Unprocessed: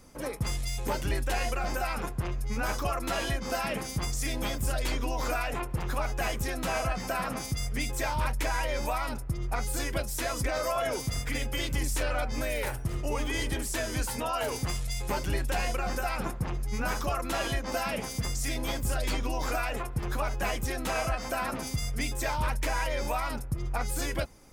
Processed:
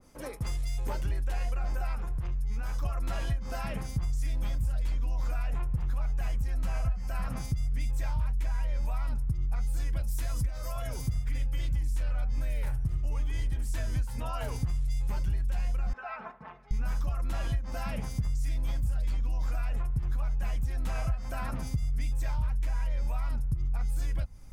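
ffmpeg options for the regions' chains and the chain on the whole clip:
ffmpeg -i in.wav -filter_complex "[0:a]asettb=1/sr,asplit=3[link_01][link_02][link_03];[link_01]atrim=end=1.954[link_04];[link_02]atrim=start=1.95:end=2.83,asetpts=PTS-STARTPTS,afade=type=in:duration=0.004:curve=qsin,afade=type=out:start_time=0.876:duration=0.004:curve=qsin,bandreject=frequency=620:width=18,acompressor=threshold=-33dB:ratio=6:attack=3.2:release=140:knee=1:detection=peak[link_05];[link_03]atrim=start=2.826[link_06];[link_04][link_05]acrossfade=duration=0.004:curve1=hsin:curve2=qsin[link_07];[link_07][link_06]acrossfade=duration=0.004:curve1=qsin:curve2=hsin,asettb=1/sr,asplit=3[link_08][link_09][link_10];[link_08]atrim=end=6.284[link_11];[link_09]atrim=start=6.28:end=7.27,asetpts=PTS-STARTPTS,afade=type=in:duration=0.004:curve=qsin,afade=type=out:start_time=0.986:duration=0.004:curve=qsin,bandreject=frequency=3600:width=11,asubboost=boost=6:cutoff=98[link_12];[link_10]atrim=start=7.266[link_13];[link_11][link_12]acrossfade=duration=0.004:curve1=hsin:curve2=qsin[link_14];[link_14][link_13]acrossfade=duration=0.004:curve1=qsin:curve2=hsin,asettb=1/sr,asplit=3[link_15][link_16][link_17];[link_15]atrim=end=10.024[link_18];[link_16]atrim=start=10.02:end=11.13,asetpts=PTS-STARTPTS,afade=type=in:duration=0.004:curve=qsin,afade=type=out:start_time=1.106:duration=0.004:curve=qsin,highshelf=frequency=10000:gain=8,acrossover=split=150|3000[link_19][link_20][link_21];[link_20]acompressor=threshold=-36dB:ratio=2:attack=3.2:release=140:knee=2.83:detection=peak[link_22];[link_19][link_22][link_21]amix=inputs=3:normalize=0[link_23];[link_17]atrim=start=11.126[link_24];[link_18][link_23]acrossfade=duration=0.004:curve1=hsin:curve2=qsin[link_25];[link_25][link_24]acrossfade=duration=0.004:curve1=qsin:curve2=hsin,asettb=1/sr,asplit=3[link_26][link_27][link_28];[link_26]atrim=end=15.934[link_29];[link_27]atrim=start=15.93:end=16.71,asetpts=PTS-STARTPTS,afade=type=in:duration=0.004:curve=qsin,afade=type=out:start_time=0.776:duration=0.004:curve=qsin,highpass=620,lowpass=2400,aemphasis=mode=reproduction:type=50fm,aecho=1:1:4.6:0.8,atrim=end_sample=34398[link_30];[link_28]atrim=start=16.706[link_31];[link_29][link_30]acrossfade=duration=0.004:curve1=hsin:curve2=qsin[link_32];[link_32][link_31]acrossfade=duration=0.004:curve1=qsin:curve2=hsin,asubboost=boost=8.5:cutoff=120,acompressor=threshold=-22dB:ratio=6,adynamicequalizer=threshold=0.00398:dfrequency=1900:dqfactor=0.7:tfrequency=1900:tqfactor=0.7:attack=5:release=100:ratio=0.375:range=3:mode=cutabove:tftype=highshelf,volume=-4.5dB" out.wav

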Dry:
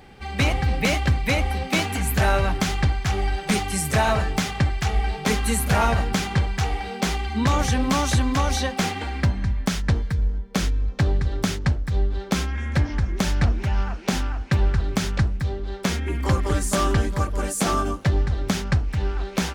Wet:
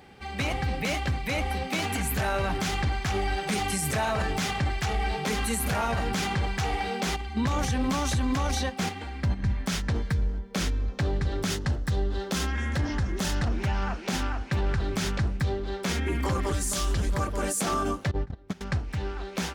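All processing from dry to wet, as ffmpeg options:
ffmpeg -i in.wav -filter_complex "[0:a]asettb=1/sr,asplit=3[link_01][link_02][link_03];[link_01]atrim=end=7.164[link_04];[link_02]atrim=start=7.16:end=9.5,asetpts=PTS-STARTPTS,afade=type=in:duration=0.004:curve=qsin,afade=type=out:start_time=2.336:duration=0.004:curve=qsin,agate=range=-10dB:threshold=-25dB:ratio=16:release=100:detection=peak,lowshelf=frequency=160:gain=6.5[link_05];[link_03]atrim=start=9.496[link_06];[link_04][link_05]acrossfade=duration=0.004:curve1=hsin:curve2=qsin[link_07];[link_07][link_06]acrossfade=duration=0.004:curve1=qsin:curve2=hsin,asettb=1/sr,asplit=3[link_08][link_09][link_10];[link_08]atrim=end=11.504[link_11];[link_09]atrim=start=11.5:end=13.48,asetpts=PTS-STARTPTS,afade=type=in:duration=0.004:curve=qsin,afade=type=out:start_time=1.976:duration=0.004:curve=qsin,highshelf=frequency=5600:gain=4.5,bandreject=frequency=2300:width=9.5[link_12];[link_10]atrim=start=13.476[link_13];[link_11][link_12]acrossfade=duration=0.004:curve1=hsin:curve2=qsin[link_14];[link_14][link_13]acrossfade=duration=0.004:curve1=qsin:curve2=hsin,asettb=1/sr,asplit=3[link_15][link_16][link_17];[link_15]atrim=end=16.524[link_18];[link_16]atrim=start=16.52:end=17.15,asetpts=PTS-STARTPTS,afade=type=in:duration=0.004:curve=qsin,afade=type=out:start_time=0.626:duration=0.004:curve=qsin,asubboost=boost=10.5:cutoff=79,acrossover=split=120|3000[link_19][link_20][link_21];[link_20]acompressor=threshold=-32dB:ratio=6:attack=3.2:release=140:knee=2.83:detection=peak[link_22];[link_19][link_22][link_21]amix=inputs=3:normalize=0,aeval=exprs='0.211*(abs(mod(val(0)/0.211+3,4)-2)-1)':channel_layout=same[link_23];[link_17]atrim=start=17.146[link_24];[link_18][link_23]acrossfade=duration=0.004:curve1=hsin:curve2=qsin[link_25];[link_25][link_24]acrossfade=duration=0.004:curve1=qsin:curve2=hsin,asettb=1/sr,asplit=3[link_26][link_27][link_28];[link_26]atrim=end=18.114[link_29];[link_27]atrim=start=18.11:end=18.61,asetpts=PTS-STARTPTS,afade=type=in:duration=0.004:curve=qsin,afade=type=out:start_time=0.496:duration=0.004:curve=qsin,agate=range=-20dB:threshold=-20dB:ratio=16:release=100:detection=peak,highshelf=frequency=2900:gain=-11[link_30];[link_28]atrim=start=18.606[link_31];[link_29][link_30]acrossfade=duration=0.004:curve1=hsin:curve2=qsin[link_32];[link_32][link_31]acrossfade=duration=0.004:curve1=qsin:curve2=hsin,highpass=frequency=94:poles=1,dynaudnorm=framelen=260:gausssize=17:maxgain=5.5dB,alimiter=limit=-16dB:level=0:latency=1:release=25,volume=-3dB" out.wav

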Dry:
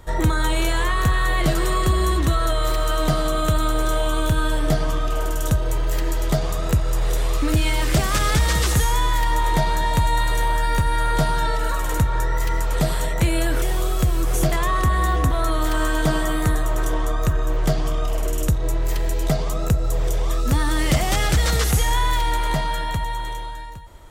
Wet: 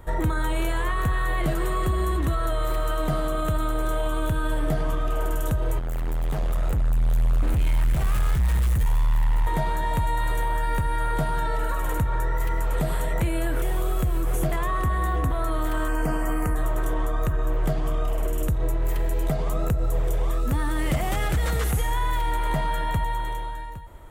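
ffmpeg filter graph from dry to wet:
ffmpeg -i in.wav -filter_complex "[0:a]asettb=1/sr,asplit=3[link_01][link_02][link_03];[link_01]atrim=end=5.794[link_04];[link_02]atrim=start=5.79:end=9.47,asetpts=PTS-STARTPTS,afade=type=in:duration=0.004:curve=qsin,afade=type=out:start_time=3.676:duration=0.004:curve=qsin,volume=26.5dB,asoftclip=hard,volume=-26.5dB,asubboost=boost=5:cutoff=160[link_05];[link_03]atrim=start=9.466[link_06];[link_04][link_05]acrossfade=duration=0.004:curve1=hsin:curve2=qsin[link_07];[link_07][link_06]acrossfade=duration=0.004:curve1=qsin:curve2=hsin,asettb=1/sr,asplit=3[link_08][link_09][link_10];[link_08]atrim=end=15.884[link_11];[link_09]atrim=start=15.88:end=16.56,asetpts=PTS-STARTPTS,afade=type=in:duration=0.004:curve=qsin,afade=type=out:start_time=0.676:duration=0.004:curve=qsin,asuperstop=centerf=3700:order=8:qfactor=2.8,aecho=1:1:4.1:0.34,atrim=end_sample=29988[link_12];[link_10]atrim=start=16.556[link_13];[link_11][link_12]acrossfade=duration=0.004:curve1=hsin:curve2=qsin[link_14];[link_14][link_13]acrossfade=duration=0.004:curve1=qsin:curve2=hsin,equalizer=frequency=5200:width_type=o:width=1.3:gain=-12,alimiter=limit=-16.5dB:level=0:latency=1:release=96" out.wav

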